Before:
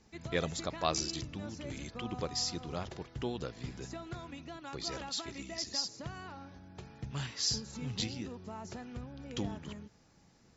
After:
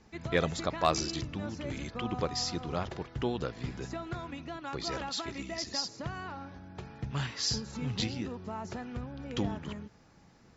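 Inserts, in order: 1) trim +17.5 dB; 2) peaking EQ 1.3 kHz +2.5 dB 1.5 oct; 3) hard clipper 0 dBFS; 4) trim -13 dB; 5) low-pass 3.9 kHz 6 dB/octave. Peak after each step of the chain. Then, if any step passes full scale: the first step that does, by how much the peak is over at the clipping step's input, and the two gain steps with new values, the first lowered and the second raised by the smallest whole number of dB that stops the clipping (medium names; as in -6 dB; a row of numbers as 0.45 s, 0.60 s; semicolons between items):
+4.0 dBFS, +4.5 dBFS, 0.0 dBFS, -13.0 dBFS, -13.0 dBFS; step 1, 4.5 dB; step 1 +12.5 dB, step 4 -8 dB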